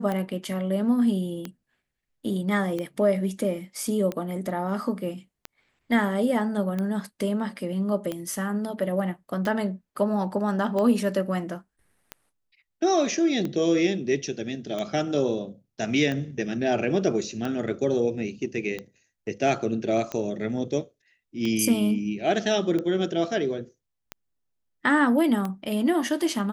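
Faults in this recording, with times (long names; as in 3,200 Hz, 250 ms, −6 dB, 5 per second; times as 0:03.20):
scratch tick 45 rpm −17 dBFS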